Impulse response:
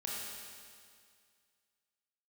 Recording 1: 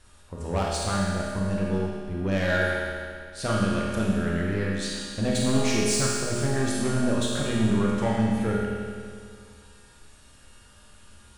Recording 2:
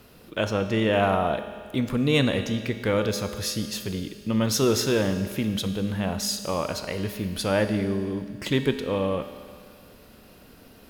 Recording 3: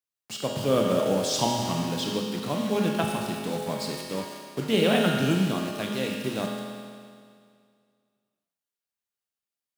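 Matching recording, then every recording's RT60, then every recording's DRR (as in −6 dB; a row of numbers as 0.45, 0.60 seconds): 1; 2.1, 2.1, 2.1 seconds; −5.0, 8.0, 0.0 decibels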